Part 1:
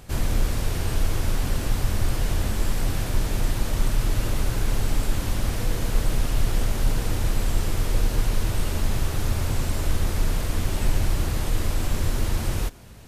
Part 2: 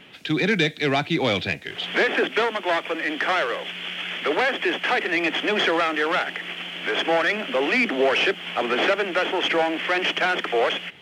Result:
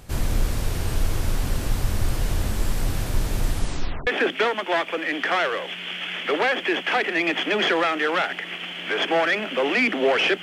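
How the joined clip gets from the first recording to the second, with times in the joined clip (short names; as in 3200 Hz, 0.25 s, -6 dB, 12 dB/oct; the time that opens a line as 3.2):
part 1
3.5 tape stop 0.57 s
4.07 switch to part 2 from 2.04 s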